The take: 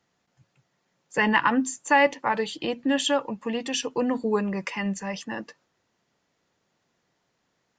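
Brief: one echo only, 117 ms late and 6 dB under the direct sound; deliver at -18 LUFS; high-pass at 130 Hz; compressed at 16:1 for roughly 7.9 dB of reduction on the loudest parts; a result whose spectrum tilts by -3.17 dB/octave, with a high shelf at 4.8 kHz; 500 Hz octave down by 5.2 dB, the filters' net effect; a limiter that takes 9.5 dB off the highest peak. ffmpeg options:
-af "highpass=130,equalizer=f=500:t=o:g=-6,highshelf=f=4800:g=7,acompressor=threshold=0.0708:ratio=16,alimiter=limit=0.075:level=0:latency=1,aecho=1:1:117:0.501,volume=4.73"

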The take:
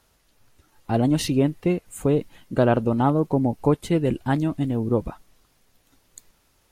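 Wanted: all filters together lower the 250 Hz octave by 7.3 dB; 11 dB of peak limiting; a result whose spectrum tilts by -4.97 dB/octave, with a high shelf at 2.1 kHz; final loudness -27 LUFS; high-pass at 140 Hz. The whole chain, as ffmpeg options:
-af "highpass=140,equalizer=f=250:t=o:g=-9,highshelf=f=2100:g=6.5,volume=1.26,alimiter=limit=0.178:level=0:latency=1"

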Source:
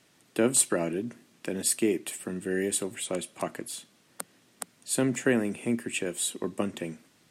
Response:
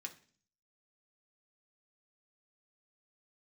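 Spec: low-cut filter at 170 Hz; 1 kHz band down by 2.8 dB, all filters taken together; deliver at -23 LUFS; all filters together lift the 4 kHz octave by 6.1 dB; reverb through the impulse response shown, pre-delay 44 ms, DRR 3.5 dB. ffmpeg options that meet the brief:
-filter_complex "[0:a]highpass=170,equalizer=f=1000:t=o:g=-4.5,equalizer=f=4000:t=o:g=7.5,asplit=2[s0][s1];[1:a]atrim=start_sample=2205,adelay=44[s2];[s1][s2]afir=irnorm=-1:irlink=0,volume=0.944[s3];[s0][s3]amix=inputs=2:normalize=0,volume=1.68"

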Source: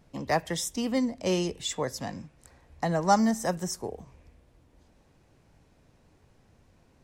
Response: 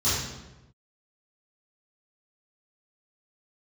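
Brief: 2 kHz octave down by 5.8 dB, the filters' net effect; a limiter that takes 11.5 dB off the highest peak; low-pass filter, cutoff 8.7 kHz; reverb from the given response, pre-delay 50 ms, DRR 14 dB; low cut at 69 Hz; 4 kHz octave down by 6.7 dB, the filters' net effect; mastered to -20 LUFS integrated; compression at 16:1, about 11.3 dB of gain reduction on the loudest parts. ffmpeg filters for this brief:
-filter_complex "[0:a]highpass=69,lowpass=8700,equalizer=f=2000:t=o:g=-5.5,equalizer=f=4000:t=o:g=-7.5,acompressor=threshold=0.0398:ratio=16,alimiter=level_in=2:limit=0.0631:level=0:latency=1,volume=0.501,asplit=2[s0][s1];[1:a]atrim=start_sample=2205,adelay=50[s2];[s1][s2]afir=irnorm=-1:irlink=0,volume=0.0447[s3];[s0][s3]amix=inputs=2:normalize=0,volume=8.91"

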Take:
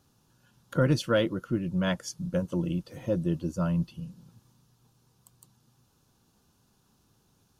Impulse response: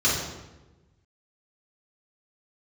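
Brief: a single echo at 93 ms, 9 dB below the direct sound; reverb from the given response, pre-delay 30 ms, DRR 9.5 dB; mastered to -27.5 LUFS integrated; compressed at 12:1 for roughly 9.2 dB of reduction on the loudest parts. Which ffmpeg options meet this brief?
-filter_complex "[0:a]acompressor=threshold=0.0398:ratio=12,aecho=1:1:93:0.355,asplit=2[s0][s1];[1:a]atrim=start_sample=2205,adelay=30[s2];[s1][s2]afir=irnorm=-1:irlink=0,volume=0.0596[s3];[s0][s3]amix=inputs=2:normalize=0,volume=2"

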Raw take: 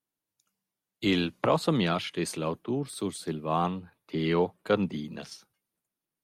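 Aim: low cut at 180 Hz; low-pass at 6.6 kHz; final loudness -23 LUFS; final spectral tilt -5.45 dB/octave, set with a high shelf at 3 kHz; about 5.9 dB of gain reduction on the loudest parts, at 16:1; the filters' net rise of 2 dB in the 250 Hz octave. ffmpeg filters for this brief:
-af "highpass=180,lowpass=6600,equalizer=f=250:t=o:g=4.5,highshelf=f=3000:g=-7.5,acompressor=threshold=0.0631:ratio=16,volume=2.82"

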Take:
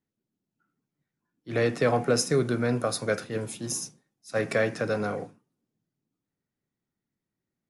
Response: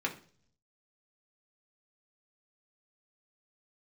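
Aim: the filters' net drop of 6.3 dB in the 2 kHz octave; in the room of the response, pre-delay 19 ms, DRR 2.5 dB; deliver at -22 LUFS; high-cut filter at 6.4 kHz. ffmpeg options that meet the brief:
-filter_complex "[0:a]lowpass=6400,equalizer=f=2000:t=o:g=-8.5,asplit=2[s0][s1];[1:a]atrim=start_sample=2205,adelay=19[s2];[s1][s2]afir=irnorm=-1:irlink=0,volume=0.398[s3];[s0][s3]amix=inputs=2:normalize=0,volume=1.78"

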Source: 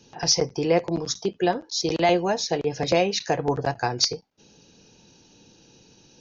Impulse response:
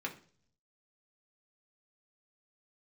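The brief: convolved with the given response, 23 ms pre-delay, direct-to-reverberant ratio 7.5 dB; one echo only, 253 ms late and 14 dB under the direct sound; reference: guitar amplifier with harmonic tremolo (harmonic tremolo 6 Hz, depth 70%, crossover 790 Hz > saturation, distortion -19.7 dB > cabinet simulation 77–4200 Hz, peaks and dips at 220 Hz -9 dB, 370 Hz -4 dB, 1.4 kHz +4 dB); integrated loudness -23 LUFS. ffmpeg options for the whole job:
-filter_complex "[0:a]aecho=1:1:253:0.2,asplit=2[s0][s1];[1:a]atrim=start_sample=2205,adelay=23[s2];[s1][s2]afir=irnorm=-1:irlink=0,volume=0.316[s3];[s0][s3]amix=inputs=2:normalize=0,acrossover=split=790[s4][s5];[s4]aeval=exprs='val(0)*(1-0.7/2+0.7/2*cos(2*PI*6*n/s))':c=same[s6];[s5]aeval=exprs='val(0)*(1-0.7/2-0.7/2*cos(2*PI*6*n/s))':c=same[s7];[s6][s7]amix=inputs=2:normalize=0,asoftclip=threshold=0.188,highpass=77,equalizer=f=220:t=q:w=4:g=-9,equalizer=f=370:t=q:w=4:g=-4,equalizer=f=1400:t=q:w=4:g=4,lowpass=f=4200:w=0.5412,lowpass=f=4200:w=1.3066,volume=2.24"

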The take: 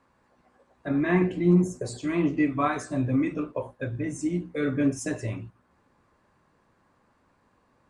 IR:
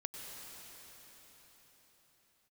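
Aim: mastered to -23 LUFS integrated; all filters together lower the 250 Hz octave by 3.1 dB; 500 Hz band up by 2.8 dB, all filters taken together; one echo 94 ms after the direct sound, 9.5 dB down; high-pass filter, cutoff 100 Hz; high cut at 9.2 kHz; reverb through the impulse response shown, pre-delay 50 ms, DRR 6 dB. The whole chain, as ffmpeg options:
-filter_complex "[0:a]highpass=100,lowpass=9200,equalizer=f=250:t=o:g=-7.5,equalizer=f=500:t=o:g=7.5,aecho=1:1:94:0.335,asplit=2[s0][s1];[1:a]atrim=start_sample=2205,adelay=50[s2];[s1][s2]afir=irnorm=-1:irlink=0,volume=0.531[s3];[s0][s3]amix=inputs=2:normalize=0,volume=1.5"

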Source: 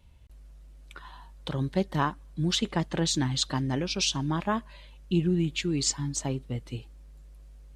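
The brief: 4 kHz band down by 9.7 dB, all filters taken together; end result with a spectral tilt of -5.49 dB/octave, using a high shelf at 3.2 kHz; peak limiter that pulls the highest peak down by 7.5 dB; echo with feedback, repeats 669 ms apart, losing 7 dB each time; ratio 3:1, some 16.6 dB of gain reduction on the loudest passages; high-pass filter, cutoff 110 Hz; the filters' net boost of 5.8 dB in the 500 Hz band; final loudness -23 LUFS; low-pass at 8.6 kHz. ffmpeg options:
-af "highpass=110,lowpass=8600,equalizer=f=500:t=o:g=8.5,highshelf=f=3200:g=-7,equalizer=f=4000:t=o:g=-7,acompressor=threshold=0.00891:ratio=3,alimiter=level_in=2.37:limit=0.0631:level=0:latency=1,volume=0.422,aecho=1:1:669|1338|2007|2676|3345:0.447|0.201|0.0905|0.0407|0.0183,volume=10"

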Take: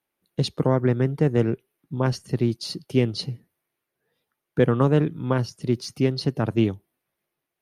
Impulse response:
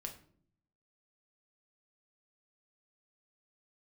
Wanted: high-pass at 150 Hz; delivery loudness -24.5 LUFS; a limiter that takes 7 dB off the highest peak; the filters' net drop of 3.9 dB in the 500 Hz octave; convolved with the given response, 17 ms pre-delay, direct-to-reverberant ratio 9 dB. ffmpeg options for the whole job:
-filter_complex "[0:a]highpass=150,equalizer=f=500:t=o:g=-5,alimiter=limit=0.158:level=0:latency=1,asplit=2[s0][s1];[1:a]atrim=start_sample=2205,adelay=17[s2];[s1][s2]afir=irnorm=-1:irlink=0,volume=0.473[s3];[s0][s3]amix=inputs=2:normalize=0,volume=1.58"

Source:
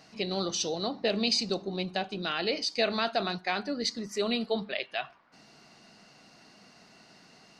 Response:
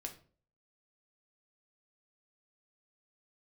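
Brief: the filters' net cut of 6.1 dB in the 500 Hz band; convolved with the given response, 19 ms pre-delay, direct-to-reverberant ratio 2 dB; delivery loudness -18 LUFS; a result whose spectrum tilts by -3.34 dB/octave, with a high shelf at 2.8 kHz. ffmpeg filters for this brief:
-filter_complex "[0:a]equalizer=f=500:t=o:g=-8,highshelf=f=2800:g=-4.5,asplit=2[s0][s1];[1:a]atrim=start_sample=2205,adelay=19[s2];[s1][s2]afir=irnorm=-1:irlink=0,volume=1.06[s3];[s0][s3]amix=inputs=2:normalize=0,volume=4.73"

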